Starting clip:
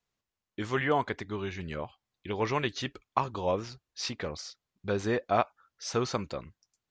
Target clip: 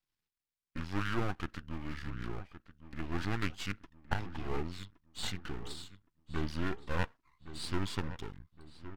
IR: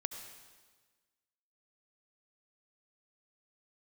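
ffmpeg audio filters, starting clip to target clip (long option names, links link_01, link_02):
-filter_complex "[0:a]aeval=exprs='max(val(0),0)':channel_layout=same,equalizer=frequency=790:width_type=o:width=1.1:gain=-11,asetrate=33957,aresample=44100,asplit=2[link_01][link_02];[link_02]adelay=1117,lowpass=frequency=2300:poles=1,volume=-13dB,asplit=2[link_03][link_04];[link_04]adelay=1117,lowpass=frequency=2300:poles=1,volume=0.43,asplit=2[link_05][link_06];[link_06]adelay=1117,lowpass=frequency=2300:poles=1,volume=0.43,asplit=2[link_07][link_08];[link_08]adelay=1117,lowpass=frequency=2300:poles=1,volume=0.43[link_09];[link_03][link_05][link_07][link_09]amix=inputs=4:normalize=0[link_10];[link_01][link_10]amix=inputs=2:normalize=0"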